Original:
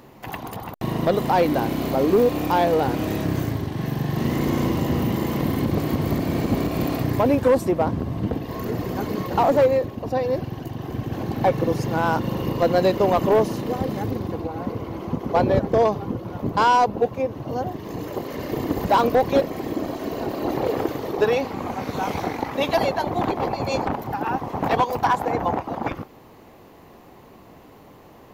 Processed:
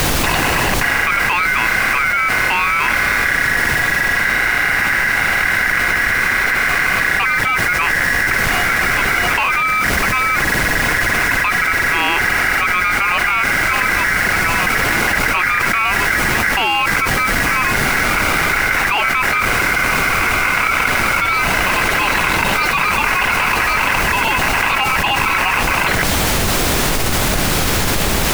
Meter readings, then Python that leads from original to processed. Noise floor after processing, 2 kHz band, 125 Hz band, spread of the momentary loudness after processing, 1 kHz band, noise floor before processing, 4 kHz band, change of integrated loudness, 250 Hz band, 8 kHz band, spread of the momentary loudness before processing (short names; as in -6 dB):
-17 dBFS, +23.0 dB, +1.5 dB, 1 LU, +6.5 dB, -47 dBFS, +16.5 dB, +9.0 dB, -2.0 dB, +21.5 dB, 11 LU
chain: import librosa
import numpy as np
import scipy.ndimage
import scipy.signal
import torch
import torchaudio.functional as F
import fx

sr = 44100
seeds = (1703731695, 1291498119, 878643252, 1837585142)

p1 = scipy.signal.sosfilt(scipy.signal.butter(4, 2900.0, 'lowpass', fs=sr, output='sos'), x)
p2 = p1 * np.sin(2.0 * np.pi * 1800.0 * np.arange(len(p1)) / sr)
p3 = fx.schmitt(p2, sr, flips_db=-37.5)
p4 = p2 + F.gain(torch.from_numpy(p3), -10.0).numpy()
p5 = fx.dmg_noise_colour(p4, sr, seeds[0], colour='pink', level_db=-36.0)
y = fx.env_flatten(p5, sr, amount_pct=100)